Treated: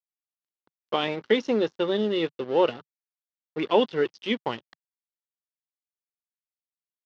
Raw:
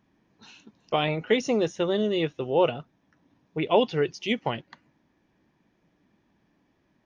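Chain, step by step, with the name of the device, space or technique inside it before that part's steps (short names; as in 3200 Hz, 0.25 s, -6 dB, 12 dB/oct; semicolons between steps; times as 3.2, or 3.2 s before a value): blown loudspeaker (crossover distortion -39.5 dBFS; speaker cabinet 140–5000 Hz, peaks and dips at 150 Hz -8 dB, 680 Hz -7 dB, 2400 Hz -5 dB); gain +2.5 dB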